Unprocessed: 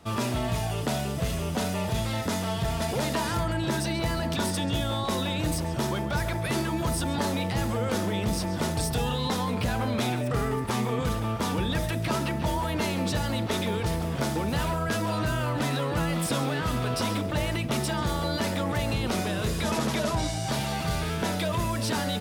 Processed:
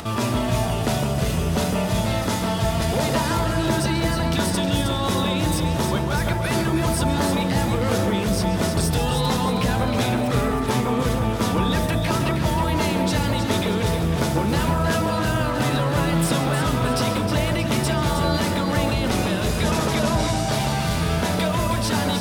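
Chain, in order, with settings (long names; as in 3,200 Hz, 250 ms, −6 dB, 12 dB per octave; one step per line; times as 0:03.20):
upward compression, threshold −30 dBFS
on a send: delay that swaps between a low-pass and a high-pass 157 ms, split 1,400 Hz, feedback 68%, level −3.5 dB
on the sum: level +4.5 dB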